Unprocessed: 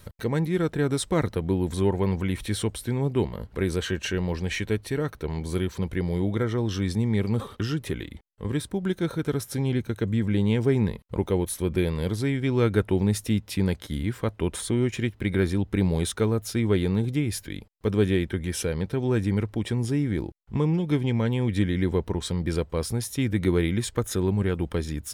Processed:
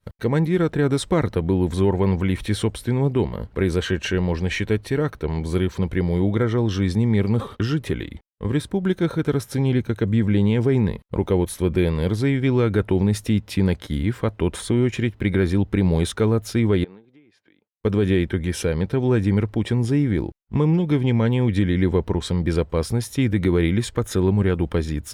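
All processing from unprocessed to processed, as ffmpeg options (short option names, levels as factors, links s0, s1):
-filter_complex "[0:a]asettb=1/sr,asplit=3[s0][s1][s2];[s0]atrim=end=16.844[s3];[s1]atrim=start=16.84:end=17.72,asetpts=PTS-STARTPTS,afade=t=in:d=0.004:c=qsin,afade=t=out:st=0.876:d=0.004:c=qsin,highpass=310,lowpass=3300,acompressor=threshold=0.00708:ratio=20:attack=3.2:release=140:knee=1:detection=peak[s4];[s2]atrim=start=17.716[s5];[s3][s4]acrossfade=d=0.004:c1=hsin:c2=qsin[s6];[s6][s5]acrossfade=d=0.004:c1=qsin:c2=hsin,agate=range=0.0224:threshold=0.0126:ratio=3:detection=peak,highshelf=f=5300:g=-8.5,alimiter=level_in=5.01:limit=0.891:release=50:level=0:latency=1,volume=0.376"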